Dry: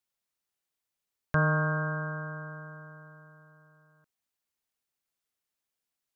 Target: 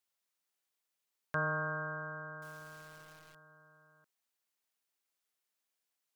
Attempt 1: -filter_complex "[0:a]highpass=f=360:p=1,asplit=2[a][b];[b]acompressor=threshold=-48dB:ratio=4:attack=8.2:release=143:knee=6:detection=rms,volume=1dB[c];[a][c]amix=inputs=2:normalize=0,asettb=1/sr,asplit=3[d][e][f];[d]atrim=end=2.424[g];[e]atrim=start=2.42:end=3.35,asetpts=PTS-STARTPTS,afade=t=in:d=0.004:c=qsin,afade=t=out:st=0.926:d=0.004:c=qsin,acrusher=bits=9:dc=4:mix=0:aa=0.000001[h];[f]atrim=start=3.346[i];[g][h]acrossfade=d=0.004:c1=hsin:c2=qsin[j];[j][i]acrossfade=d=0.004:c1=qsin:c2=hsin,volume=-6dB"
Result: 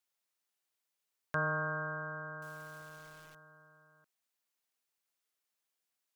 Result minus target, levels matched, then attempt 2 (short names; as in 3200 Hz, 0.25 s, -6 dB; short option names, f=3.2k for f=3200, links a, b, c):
compressor: peak gain reduction -8.5 dB
-filter_complex "[0:a]highpass=f=360:p=1,asplit=2[a][b];[b]acompressor=threshold=-59dB:ratio=4:attack=8.2:release=143:knee=6:detection=rms,volume=1dB[c];[a][c]amix=inputs=2:normalize=0,asettb=1/sr,asplit=3[d][e][f];[d]atrim=end=2.424[g];[e]atrim=start=2.42:end=3.35,asetpts=PTS-STARTPTS,afade=t=in:d=0.004:c=qsin,afade=t=out:st=0.926:d=0.004:c=qsin,acrusher=bits=9:dc=4:mix=0:aa=0.000001[h];[f]atrim=start=3.346[i];[g][h]acrossfade=d=0.004:c1=hsin:c2=qsin[j];[j][i]acrossfade=d=0.004:c1=qsin:c2=hsin,volume=-6dB"